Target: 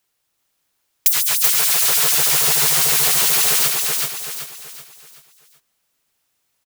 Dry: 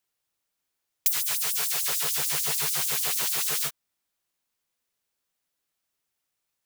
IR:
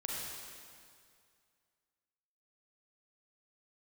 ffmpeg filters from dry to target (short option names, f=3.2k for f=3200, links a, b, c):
-filter_complex "[0:a]acontrast=74,asplit=2[a][b];[b]aecho=0:1:380|760|1140|1520|1900:0.708|0.283|0.113|0.0453|0.0181[c];[a][c]amix=inputs=2:normalize=0,volume=2.5dB"